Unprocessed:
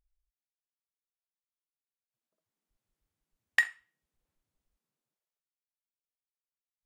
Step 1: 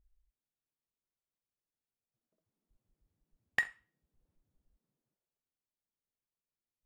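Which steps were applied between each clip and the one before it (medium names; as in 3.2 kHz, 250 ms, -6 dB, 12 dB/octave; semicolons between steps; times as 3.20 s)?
tilt shelf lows +8.5 dB, about 760 Hz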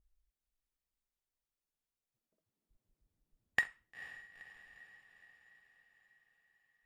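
harmonic-percussive split harmonic -4 dB; echo that smears into a reverb 475 ms, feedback 58%, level -14 dB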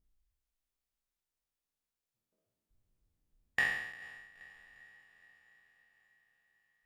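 spectral sustain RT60 0.94 s; trim -2.5 dB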